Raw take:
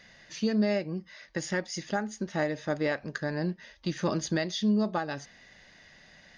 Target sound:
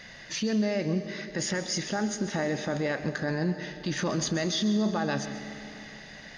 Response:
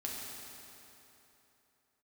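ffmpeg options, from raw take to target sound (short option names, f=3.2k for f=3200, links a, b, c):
-filter_complex "[0:a]alimiter=level_in=5dB:limit=-24dB:level=0:latency=1:release=30,volume=-5dB,asplit=2[a][b];[1:a]atrim=start_sample=2205,adelay=133[c];[b][c]afir=irnorm=-1:irlink=0,volume=-11dB[d];[a][d]amix=inputs=2:normalize=0,volume=8.5dB"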